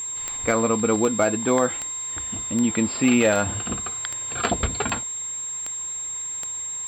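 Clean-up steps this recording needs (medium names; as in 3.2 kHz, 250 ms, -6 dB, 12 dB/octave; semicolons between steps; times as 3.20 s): clip repair -10.5 dBFS; de-click; band-stop 7.5 kHz, Q 30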